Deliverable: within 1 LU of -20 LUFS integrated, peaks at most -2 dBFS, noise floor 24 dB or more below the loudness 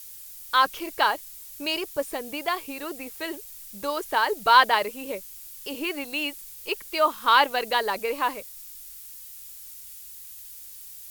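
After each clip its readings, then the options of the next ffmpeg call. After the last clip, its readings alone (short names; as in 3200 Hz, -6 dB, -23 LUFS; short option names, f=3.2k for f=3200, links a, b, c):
noise floor -43 dBFS; noise floor target -49 dBFS; loudness -25.0 LUFS; peak -4.5 dBFS; loudness target -20.0 LUFS
-> -af "afftdn=nr=6:nf=-43"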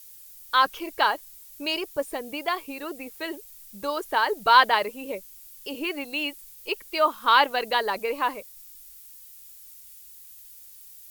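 noise floor -48 dBFS; noise floor target -49 dBFS
-> -af "afftdn=nr=6:nf=-48"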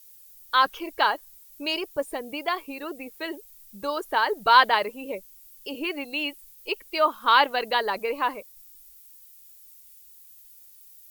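noise floor -51 dBFS; loudness -25.0 LUFS; peak -4.5 dBFS; loudness target -20.0 LUFS
-> -af "volume=5dB,alimiter=limit=-2dB:level=0:latency=1"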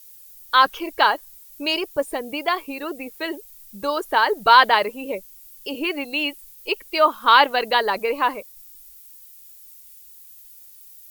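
loudness -20.5 LUFS; peak -2.0 dBFS; noise floor -46 dBFS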